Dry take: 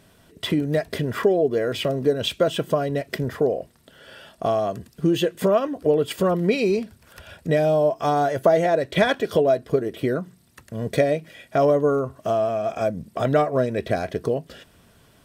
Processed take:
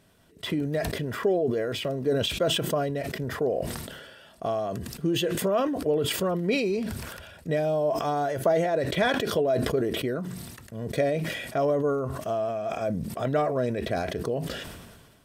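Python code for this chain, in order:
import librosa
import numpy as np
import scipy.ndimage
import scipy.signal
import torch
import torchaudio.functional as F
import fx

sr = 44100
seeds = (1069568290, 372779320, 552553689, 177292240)

y = fx.sustainer(x, sr, db_per_s=38.0)
y = y * librosa.db_to_amplitude(-6.5)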